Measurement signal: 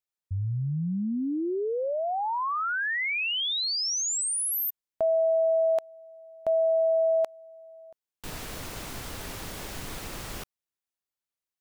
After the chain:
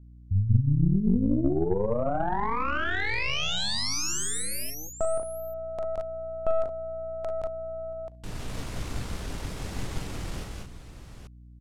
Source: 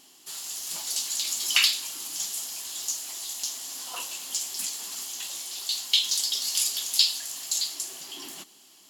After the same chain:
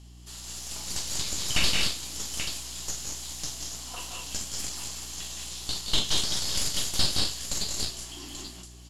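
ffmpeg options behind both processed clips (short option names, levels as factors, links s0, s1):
-af "aecho=1:1:42|170|191|213|224|834:0.398|0.422|0.562|0.211|0.376|0.316,aeval=exprs='(tanh(8.91*val(0)+0.75)-tanh(0.75))/8.91':c=same,aeval=exprs='val(0)+0.00158*(sin(2*PI*60*n/s)+sin(2*PI*2*60*n/s)/2+sin(2*PI*3*60*n/s)/3+sin(2*PI*4*60*n/s)/4+sin(2*PI*5*60*n/s)/5)':c=same,aeval=exprs='0.188*(cos(1*acos(clip(val(0)/0.188,-1,1)))-cos(1*PI/2))+0.00188*(cos(7*acos(clip(val(0)/0.188,-1,1)))-cos(7*PI/2))':c=same,lowpass=9500,lowshelf=f=300:g=10.5"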